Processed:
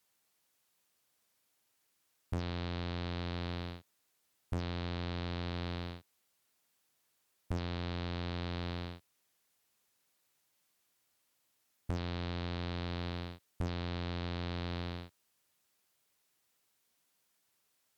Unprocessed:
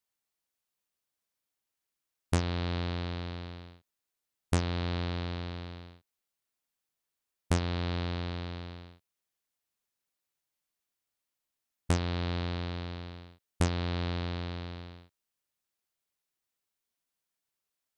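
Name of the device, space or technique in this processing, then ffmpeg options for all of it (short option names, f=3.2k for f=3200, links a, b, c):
podcast mastering chain: -af "highpass=76,deesser=0.9,acompressor=threshold=-42dB:ratio=4,alimiter=level_in=9.5dB:limit=-24dB:level=0:latency=1:release=26,volume=-9.5dB,volume=10.5dB" -ar 44100 -c:a libmp3lame -b:a 128k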